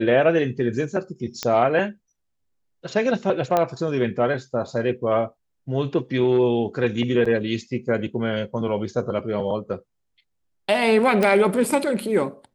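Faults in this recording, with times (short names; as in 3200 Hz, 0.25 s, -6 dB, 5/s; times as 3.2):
1.43 pop -9 dBFS
3.57 pop -8 dBFS
7.25–7.26 gap 5.3 ms
11.23 pop -9 dBFS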